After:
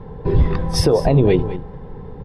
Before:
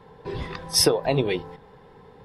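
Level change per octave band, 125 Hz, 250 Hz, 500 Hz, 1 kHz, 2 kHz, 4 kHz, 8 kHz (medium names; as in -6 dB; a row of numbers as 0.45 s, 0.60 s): +14.0 dB, +10.0 dB, +7.0 dB, +5.0 dB, 0.0 dB, -4.0 dB, -6.0 dB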